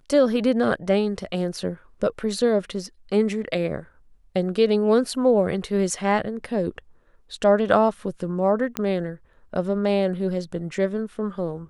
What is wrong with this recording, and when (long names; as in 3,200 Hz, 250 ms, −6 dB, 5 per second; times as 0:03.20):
0:08.77: click −9 dBFS